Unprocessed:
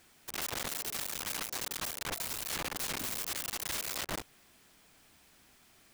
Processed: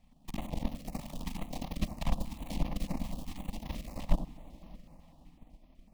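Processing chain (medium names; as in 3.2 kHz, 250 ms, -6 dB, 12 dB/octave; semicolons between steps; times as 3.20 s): 0.87–3.22 s: transient shaper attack +9 dB, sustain -3 dB; tone controls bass +10 dB, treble -11 dB; static phaser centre 400 Hz, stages 6; feedback echo behind a low-pass 89 ms, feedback 32%, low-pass 950 Hz, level -5 dB; reverberation RT60 4.8 s, pre-delay 17 ms, DRR 7.5 dB; transient shaper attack +9 dB, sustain -5 dB; tilt EQ -2 dB/octave; step-sequenced notch 8 Hz 370–8000 Hz; trim -3 dB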